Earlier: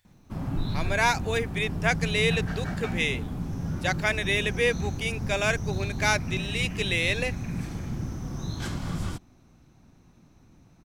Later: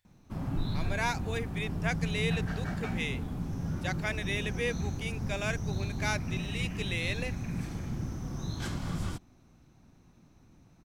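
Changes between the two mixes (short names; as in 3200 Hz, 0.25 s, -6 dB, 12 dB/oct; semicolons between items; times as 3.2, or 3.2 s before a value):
speech -8.5 dB; background -3.0 dB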